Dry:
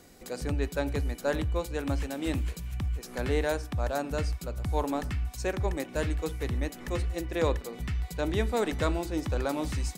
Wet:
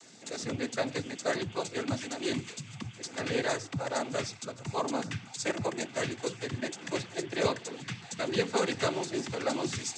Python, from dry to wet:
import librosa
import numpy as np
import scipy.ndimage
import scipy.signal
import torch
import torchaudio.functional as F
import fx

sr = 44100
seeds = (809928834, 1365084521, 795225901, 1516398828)

y = fx.high_shelf(x, sr, hz=2200.0, db=9.5)
y = fx.noise_vocoder(y, sr, seeds[0], bands=16)
y = F.gain(torch.from_numpy(y), -1.5).numpy()